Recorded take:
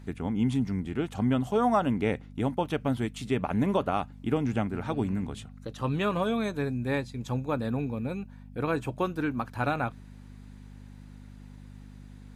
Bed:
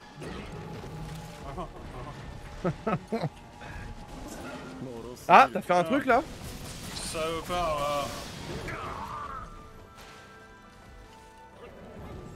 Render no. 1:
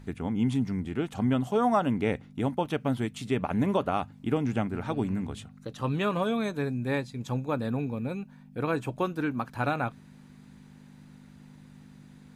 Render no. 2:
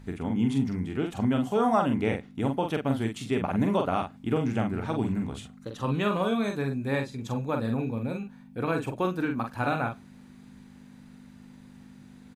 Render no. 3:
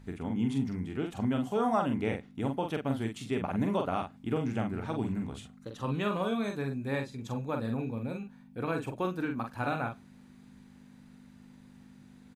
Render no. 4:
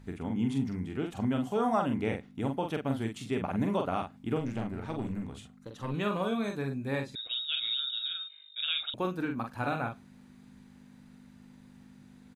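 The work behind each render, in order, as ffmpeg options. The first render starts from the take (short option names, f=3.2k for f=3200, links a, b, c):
-af "bandreject=f=50:t=h:w=4,bandreject=f=100:t=h:w=4"
-filter_complex "[0:a]asplit=2[a][b];[b]adelay=44,volume=-5dB[c];[a][c]amix=inputs=2:normalize=0,asplit=2[d][e];[e]adelay=99.13,volume=-29dB,highshelf=f=4k:g=-2.23[f];[d][f]amix=inputs=2:normalize=0"
-af "volume=-4.5dB"
-filter_complex "[0:a]asettb=1/sr,asplit=3[a][b][c];[a]atrim=end=4.394[d];[b]atrim=start=4.39:end=5.94,asetpts=PTS-STARTPTS,afade=t=in:d=0.004:c=qsin,afade=t=out:st=1.546:d=0.004:c=qsin,aeval=exprs='(tanh(15.8*val(0)+0.5)-tanh(0.5))/15.8':c=same[e];[c]atrim=start=5.936[f];[d][e]acrossfade=d=0.004:c1=hsin:c2=qsin[g];[g][f]acrossfade=d=0.004:c1=qsin:c2=hsin,asettb=1/sr,asplit=3[h][i][j];[h]atrim=end=7.154[k];[i]atrim=start=7.15:end=8.94,asetpts=PTS-STARTPTS,afade=t=in:d=0.004:c=qsin,afade=t=out:st=1.786:d=0.004:c=qsin,lowpass=f=3.3k:t=q:w=0.5098,lowpass=f=3.3k:t=q:w=0.6013,lowpass=f=3.3k:t=q:w=0.9,lowpass=f=3.3k:t=q:w=2.563,afreqshift=-3900[l];[j]atrim=start=8.936[m];[k][l]acrossfade=d=0.004:c1=hsin:c2=qsin[n];[n][m]acrossfade=d=0.004:c1=qsin:c2=hsin"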